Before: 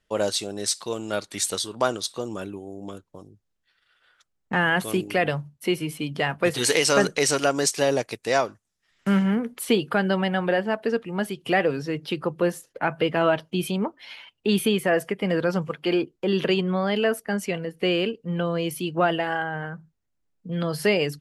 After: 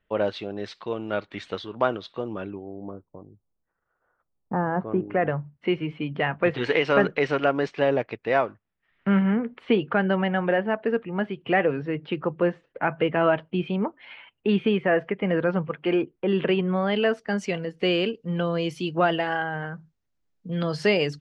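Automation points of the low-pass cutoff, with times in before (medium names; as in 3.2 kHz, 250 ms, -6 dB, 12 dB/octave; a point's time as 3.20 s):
low-pass 24 dB/octave
2.47 s 2.9 kHz
2.92 s 1.1 kHz
4.71 s 1.1 kHz
5.69 s 2.7 kHz
16.69 s 2.7 kHz
17.38 s 6.6 kHz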